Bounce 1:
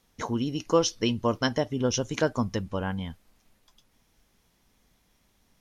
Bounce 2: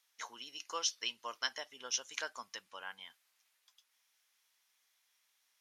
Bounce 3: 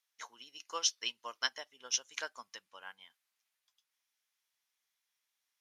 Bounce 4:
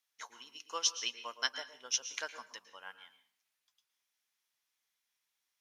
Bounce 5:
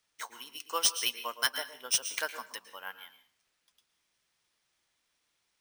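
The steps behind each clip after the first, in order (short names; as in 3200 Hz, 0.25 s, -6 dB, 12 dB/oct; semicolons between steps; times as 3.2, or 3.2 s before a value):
HPF 1500 Hz 12 dB/oct; gain -4.5 dB
upward expander 1.5:1, over -56 dBFS; gain +4 dB
reverb RT60 0.50 s, pre-delay 0.107 s, DRR 11 dB
sample-and-hold 3×; in parallel at -6 dB: wavefolder -27.5 dBFS; on the sum: gain +3 dB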